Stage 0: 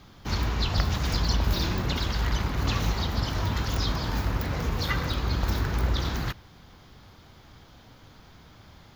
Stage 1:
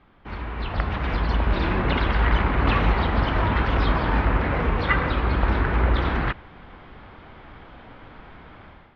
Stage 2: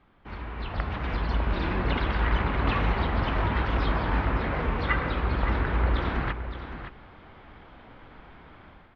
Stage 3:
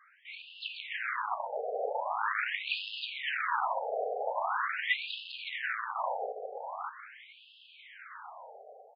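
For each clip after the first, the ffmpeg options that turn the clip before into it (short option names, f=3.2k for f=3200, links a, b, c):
-af "lowpass=f=2.6k:w=0.5412,lowpass=f=2.6k:w=1.3066,equalizer=f=110:w=0.76:g=-8,dynaudnorm=f=480:g=3:m=13dB,volume=-2.5dB"
-af "aecho=1:1:567:0.316,volume=-5dB"
-filter_complex "[0:a]asoftclip=type=tanh:threshold=-27.5dB,asplit=2[a][b];[b]adelay=37,volume=-14dB[c];[a][c]amix=inputs=2:normalize=0,afftfilt=real='re*between(b*sr/1024,550*pow(3700/550,0.5+0.5*sin(2*PI*0.43*pts/sr))/1.41,550*pow(3700/550,0.5+0.5*sin(2*PI*0.43*pts/sr))*1.41)':imag='im*between(b*sr/1024,550*pow(3700/550,0.5+0.5*sin(2*PI*0.43*pts/sr))/1.41,550*pow(3700/550,0.5+0.5*sin(2*PI*0.43*pts/sr))*1.41)':win_size=1024:overlap=0.75,volume=8.5dB"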